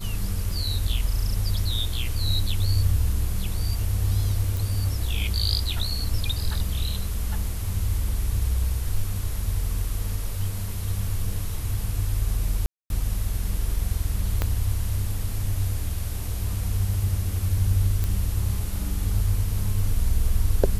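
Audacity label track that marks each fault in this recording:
0.510000	0.510000	gap 2.5 ms
4.570000	4.570000	pop
12.660000	12.900000	gap 0.241 s
14.420000	14.420000	pop -10 dBFS
18.040000	18.040000	pop

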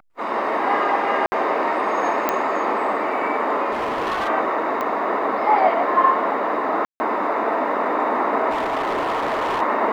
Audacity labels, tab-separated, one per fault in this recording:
1.260000	1.320000	gap 60 ms
2.290000	2.290000	pop -5 dBFS
3.710000	4.290000	clipped -20 dBFS
4.810000	4.810000	pop -13 dBFS
6.850000	7.000000	gap 0.15 s
8.500000	9.620000	clipped -19 dBFS

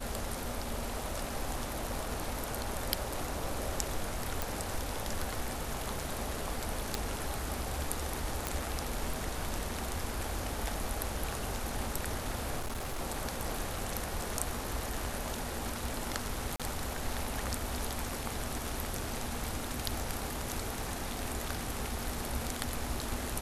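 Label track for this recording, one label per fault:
4.420000	4.420000	pop
6.950000	6.950000	pop
8.470000	8.470000	pop
12.590000	13.010000	clipped -33 dBFS
16.560000	16.600000	gap 36 ms

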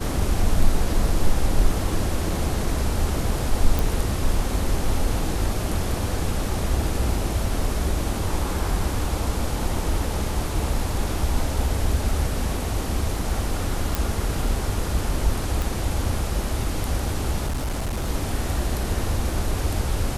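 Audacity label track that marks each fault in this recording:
3.790000	3.790000	pop
13.950000	13.950000	pop
15.620000	15.620000	pop
17.460000	18.090000	clipped -22 dBFS

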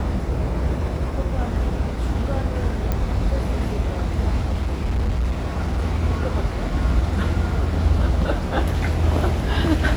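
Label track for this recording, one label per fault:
2.920000	2.920000	pop -10 dBFS
4.450000	5.840000	clipped -17.5 dBFS

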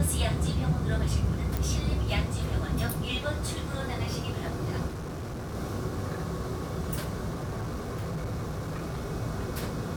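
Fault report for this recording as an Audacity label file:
1.570000	1.570000	pop
4.870000	5.550000	clipped -33.5 dBFS
7.340000	9.060000	clipped -29.5 dBFS

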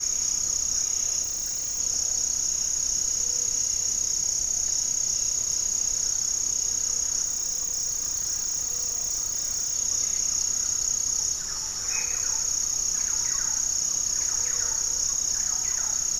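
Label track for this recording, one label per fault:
1.220000	1.800000	clipped -26.5 dBFS
7.240000	9.750000	clipped -24 dBFS

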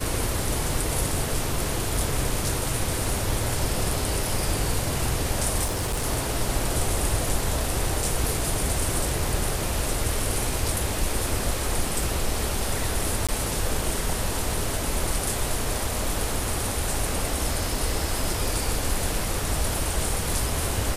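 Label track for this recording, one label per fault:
5.640000	6.060000	clipped -22.5 dBFS
13.270000	13.290000	gap 16 ms

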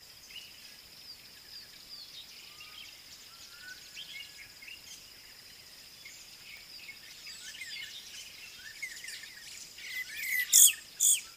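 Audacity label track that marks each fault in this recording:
6.570000	6.570000	pop

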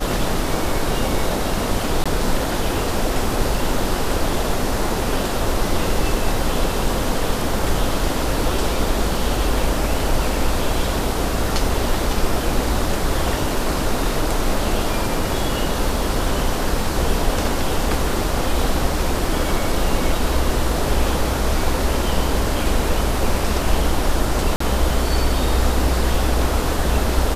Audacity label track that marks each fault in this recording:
2.040000	2.060000	gap 16 ms
24.560000	24.600000	gap 44 ms

